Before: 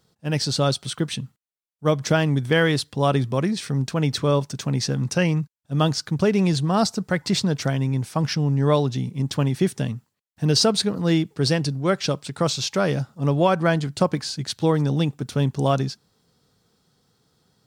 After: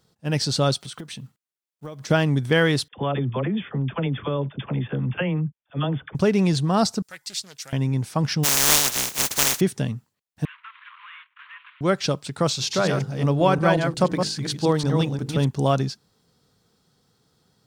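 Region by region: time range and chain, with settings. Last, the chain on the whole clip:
0:00.76–0:02.10: one scale factor per block 7 bits + low-shelf EQ 63 Hz −12 dB + downward compressor 8 to 1, threshold −32 dBFS
0:02.88–0:06.15: all-pass dispersion lows, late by 51 ms, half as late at 620 Hz + downward compressor 5 to 1, threshold −20 dBFS + linear-phase brick-wall low-pass 3,600 Hz
0:07.02–0:07.73: first-order pre-emphasis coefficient 0.97 + highs frequency-modulated by the lows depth 0.35 ms
0:08.43–0:09.59: compressing power law on the bin magnitudes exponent 0.1 + parametric band 6,400 Hz +5 dB 0.49 octaves
0:10.45–0:11.81: variable-slope delta modulation 16 kbit/s + Butterworth high-pass 990 Hz 96 dB per octave + downward compressor 2.5 to 1, threshold −42 dBFS
0:12.52–0:15.47: delay that plays each chunk backwards 178 ms, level −5 dB + mains-hum notches 50/100/150/200/250/300/350/400/450/500 Hz
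whole clip: no processing

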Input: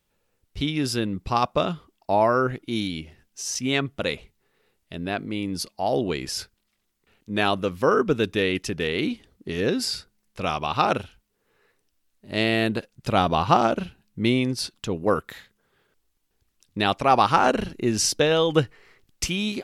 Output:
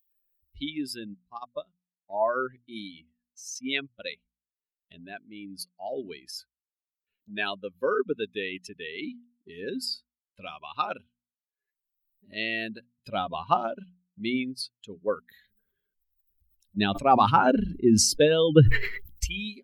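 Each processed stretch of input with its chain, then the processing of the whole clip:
0:01.14–0:02.26: parametric band 2,400 Hz −11 dB 0.28 octaves + expander for the loud parts 2.5 to 1, over −28 dBFS
0:15.28–0:19.26: low-shelf EQ 370 Hz +9.5 dB + level that may fall only so fast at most 38 dB per second
whole clip: spectral dynamics exaggerated over time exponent 2; mains-hum notches 60/120/180/240 Hz; upward compression, threshold −43 dBFS

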